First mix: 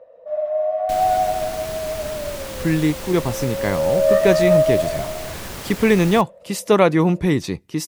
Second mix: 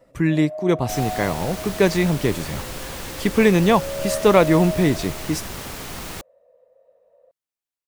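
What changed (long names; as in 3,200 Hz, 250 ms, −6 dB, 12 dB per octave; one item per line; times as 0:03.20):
speech: entry −2.45 s
first sound −11.0 dB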